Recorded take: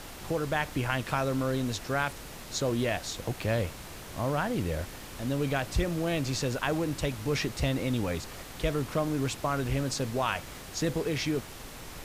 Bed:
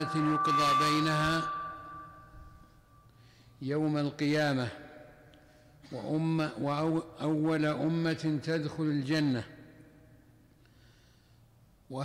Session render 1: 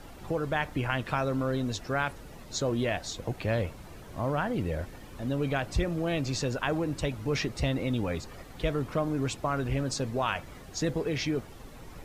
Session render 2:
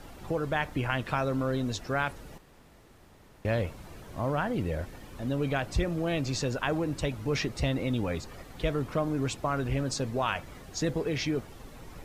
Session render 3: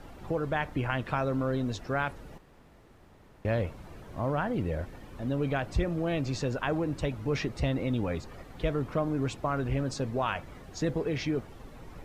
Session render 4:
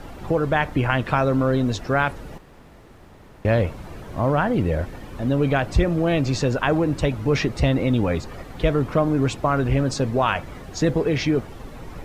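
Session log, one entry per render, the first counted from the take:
noise reduction 11 dB, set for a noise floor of -44 dBFS
2.38–3.45 s: room tone
treble shelf 3.4 kHz -8.5 dB
trim +9.5 dB

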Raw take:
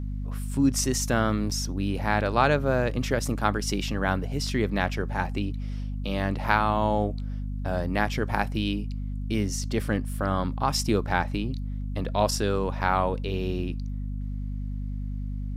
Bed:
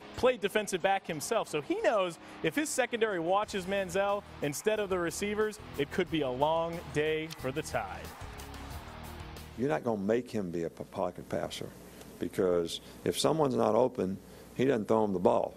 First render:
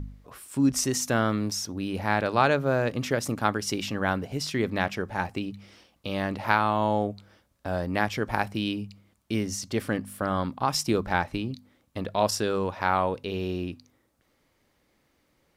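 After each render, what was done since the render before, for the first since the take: de-hum 50 Hz, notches 5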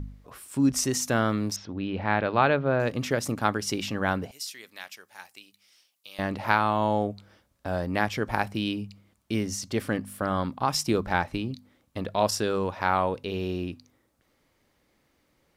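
1.56–2.80 s: low-pass 3.7 kHz 24 dB/octave; 4.31–6.19 s: differentiator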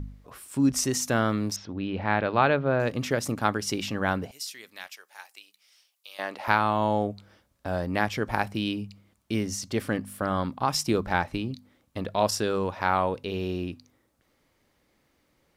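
4.87–6.48 s: high-pass 510 Hz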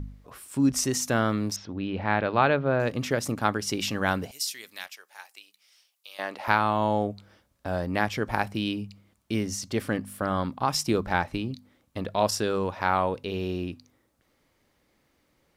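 3.80–4.86 s: treble shelf 3.1 kHz +7.5 dB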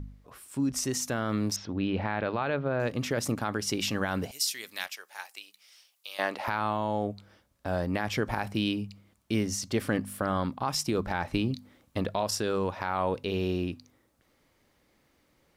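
peak limiter -16.5 dBFS, peak gain reduction 11.5 dB; gain riding within 4 dB 0.5 s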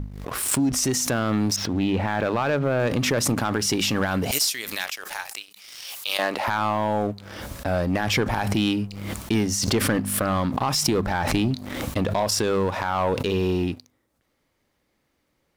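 waveshaping leveller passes 2; swell ahead of each attack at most 41 dB/s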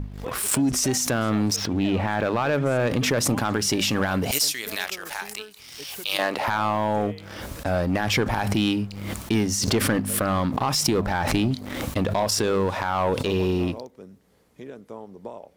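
add bed -12 dB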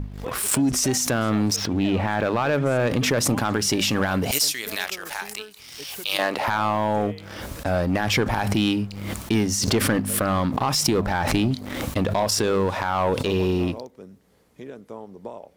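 trim +1 dB

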